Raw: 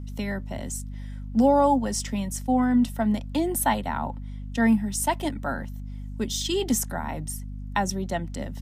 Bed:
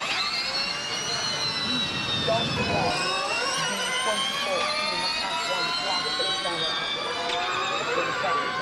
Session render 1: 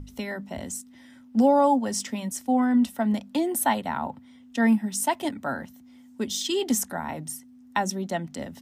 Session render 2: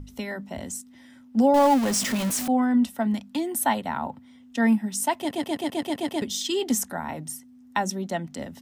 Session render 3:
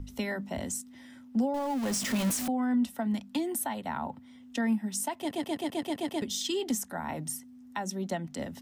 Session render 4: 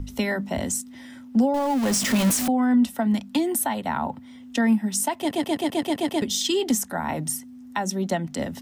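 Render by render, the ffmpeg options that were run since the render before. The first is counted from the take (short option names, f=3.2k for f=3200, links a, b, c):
-af "bandreject=f=50:t=h:w=6,bandreject=f=100:t=h:w=6,bandreject=f=150:t=h:w=6,bandreject=f=200:t=h:w=6"
-filter_complex "[0:a]asettb=1/sr,asplit=3[a][b][c];[a]atrim=end=1.544[d];[b]atrim=start=1.54:end=2.48,asetpts=PTS-STARTPTS,afade=t=in:d=0.004:c=qsin,afade=t=out:st=0.936:d=0.004:c=qsin,aeval=exprs='val(0)+0.5*0.0596*sgn(val(0))':c=same[e];[c]atrim=start=2.476[f];[d][e]acrossfade=d=0.004:c1=hsin:c2=qsin[g];[g][f]acrossfade=d=0.004:c1=qsin:c2=hsin,asettb=1/sr,asplit=3[h][i][j];[h]atrim=end=3.074[k];[i]atrim=start=3.07:end=3.63,asetpts=PTS-STARTPTS,afade=t=in:d=0.004:c=qsin,afade=t=out:st=0.556:d=0.004:c=qsin,equalizer=f=540:w=1.5:g=-8[l];[j]atrim=start=3.626[m];[k][l]acrossfade=d=0.004:c1=hsin:c2=qsin[n];[n][m]acrossfade=d=0.004:c1=qsin:c2=hsin,asplit=9[o][p][q][r][s][t][u][v][w];[o]atrim=end=5.312[x];[p]atrim=start=5.178:end=5.312[y];[q]atrim=start=5.178:end=5.312[z];[r]atrim=start=5.178:end=5.312[aa];[s]atrim=start=5.178:end=5.312[ab];[t]atrim=start=5.178:end=5.312[ac];[u]atrim=start=5.178:end=5.312[ad];[v]atrim=start=5.178:end=5.312[ae];[w]atrim=start=6.218[af];[x][y]acrossfade=d=0.004:c1=hsin:c2=hsin[ag];[ag][z]acrossfade=d=0.004:c1=hsin:c2=hsin[ah];[ah][aa]acrossfade=d=0.004:c1=hsin:c2=hsin[ai];[ai][ab]acrossfade=d=0.004:c1=hsin:c2=hsin[aj];[aj][ac]acrossfade=d=0.004:c1=hsin:c2=hsin[ak];[ak][ad]acrossfade=d=0.004:c1=hsin:c2=hsin[al];[al][ae]acrossfade=d=0.004:c1=hsin:c2=hsin[am];[am][af]acrossfade=d=0.004:c1=hsin:c2=hsin"
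-filter_complex "[0:a]alimiter=limit=-20dB:level=0:latency=1:release=463,acrossover=split=260[a][b];[b]acompressor=threshold=-29dB:ratio=6[c];[a][c]amix=inputs=2:normalize=0"
-af "volume=8dB"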